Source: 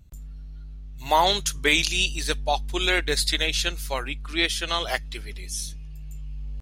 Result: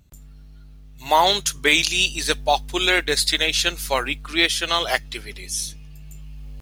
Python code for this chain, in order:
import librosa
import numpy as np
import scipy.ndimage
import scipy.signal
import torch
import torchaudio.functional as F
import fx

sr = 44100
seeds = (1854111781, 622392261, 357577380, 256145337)

p1 = fx.low_shelf(x, sr, hz=110.0, db=-11.0)
p2 = fx.rider(p1, sr, range_db=10, speed_s=0.5)
p3 = p1 + (p2 * 10.0 ** (-3.0 / 20.0))
y = fx.mod_noise(p3, sr, seeds[0], snr_db=32)